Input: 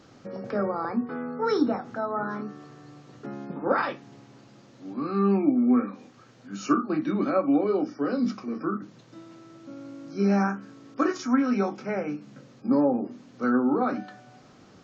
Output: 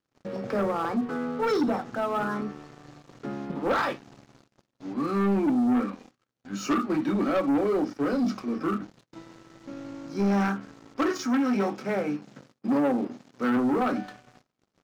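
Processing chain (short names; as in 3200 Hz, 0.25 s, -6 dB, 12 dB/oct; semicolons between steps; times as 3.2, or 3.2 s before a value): sample leveller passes 3; 11.09–13.57 HPF 110 Hz; gate -47 dBFS, range -20 dB; gain -8.5 dB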